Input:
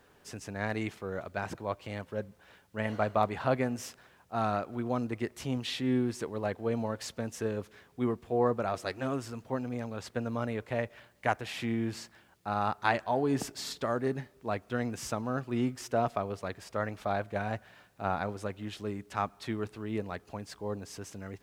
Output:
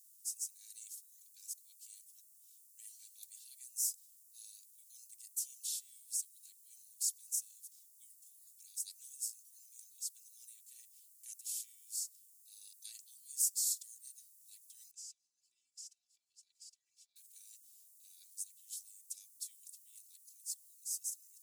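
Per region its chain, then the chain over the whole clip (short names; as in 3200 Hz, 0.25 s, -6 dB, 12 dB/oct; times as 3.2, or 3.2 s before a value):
14.91–17.16 comb 3 ms, depth 73% + compressor 10:1, threshold -39 dBFS + air absorption 150 m
whole clip: inverse Chebyshev high-pass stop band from 1400 Hz, stop band 80 dB; comb 2.6 ms, depth 86%; gain +12.5 dB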